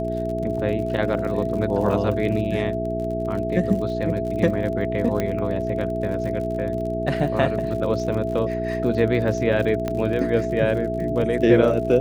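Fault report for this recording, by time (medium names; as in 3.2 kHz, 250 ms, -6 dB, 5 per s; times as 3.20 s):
crackle 57 per s -31 dBFS
hum 60 Hz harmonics 7 -28 dBFS
whine 660 Hz -26 dBFS
5.20 s: pop -11 dBFS
9.88 s: pop -13 dBFS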